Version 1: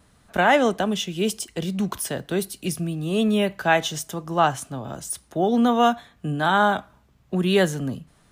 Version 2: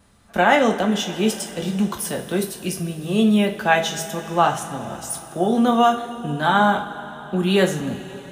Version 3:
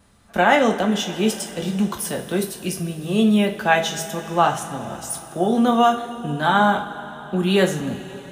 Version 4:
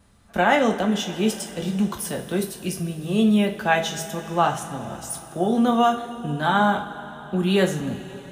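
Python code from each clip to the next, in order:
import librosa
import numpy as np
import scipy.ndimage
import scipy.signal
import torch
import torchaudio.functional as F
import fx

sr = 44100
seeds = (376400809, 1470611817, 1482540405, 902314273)

y1 = fx.rev_double_slope(x, sr, seeds[0], early_s=0.34, late_s=4.5, knee_db=-18, drr_db=2.0)
y2 = y1
y3 = fx.low_shelf(y2, sr, hz=160.0, db=4.5)
y3 = y3 * librosa.db_to_amplitude(-3.0)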